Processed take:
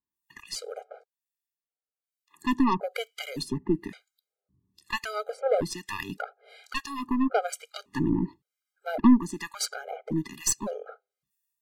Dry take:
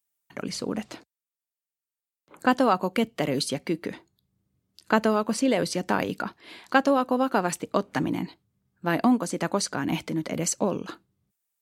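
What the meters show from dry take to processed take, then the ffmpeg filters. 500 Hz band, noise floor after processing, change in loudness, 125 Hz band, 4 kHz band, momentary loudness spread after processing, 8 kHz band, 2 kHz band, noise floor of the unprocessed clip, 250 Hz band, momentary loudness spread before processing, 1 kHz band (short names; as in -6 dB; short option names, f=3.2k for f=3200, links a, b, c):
-5.5 dB, under -85 dBFS, -3.0 dB, -3.5 dB, -3.0 dB, 15 LU, -0.5 dB, -6.0 dB, under -85 dBFS, -1.0 dB, 12 LU, -6.0 dB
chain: -filter_complex "[0:a]acrossover=split=1300[a][b];[a]aeval=exprs='val(0)*(1-1/2+1/2*cos(2*PI*1.1*n/s))':c=same[c];[b]aeval=exprs='val(0)*(1-1/2-1/2*cos(2*PI*1.1*n/s))':c=same[d];[c][d]amix=inputs=2:normalize=0,aeval=exprs='0.299*(cos(1*acos(clip(val(0)/0.299,-1,1)))-cos(1*PI/2))+0.0266*(cos(6*acos(clip(val(0)/0.299,-1,1)))-cos(6*PI/2))':c=same,afftfilt=real='re*gt(sin(2*PI*0.89*pts/sr)*(1-2*mod(floor(b*sr/1024/410),2)),0)':imag='im*gt(sin(2*PI*0.89*pts/sr)*(1-2*mod(floor(b*sr/1024/410),2)),0)':win_size=1024:overlap=0.75,volume=3.5dB"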